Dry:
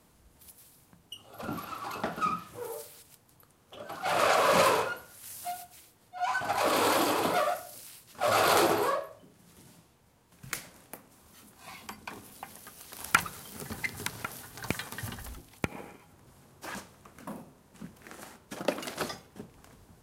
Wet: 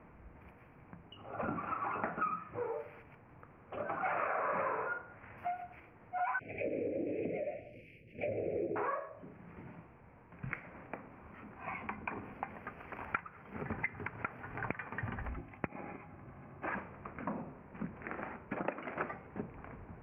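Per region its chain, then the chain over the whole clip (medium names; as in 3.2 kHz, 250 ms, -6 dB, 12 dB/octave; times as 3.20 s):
4.28–5.38 s: low-pass 2.1 kHz + doubling 50 ms -10.5 dB
6.39–8.76 s: low-pass that closes with the level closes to 910 Hz, closed at -21.5 dBFS + Chebyshev band-stop 530–2300 Hz, order 3 + peaking EQ 860 Hz -3.5 dB 0.21 oct
15.30–16.67 s: Butterworth band-stop 4.5 kHz, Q 5.3 + comb of notches 470 Hz
whole clip: dynamic bell 1.6 kHz, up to +5 dB, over -39 dBFS, Q 0.95; compression 6:1, threshold -41 dBFS; elliptic low-pass 2.4 kHz, stop band 40 dB; trim +7 dB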